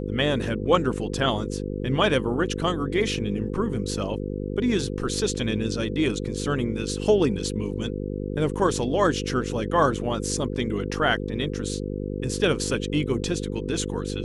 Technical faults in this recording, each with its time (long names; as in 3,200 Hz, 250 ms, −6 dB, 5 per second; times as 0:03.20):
mains buzz 50 Hz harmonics 10 −30 dBFS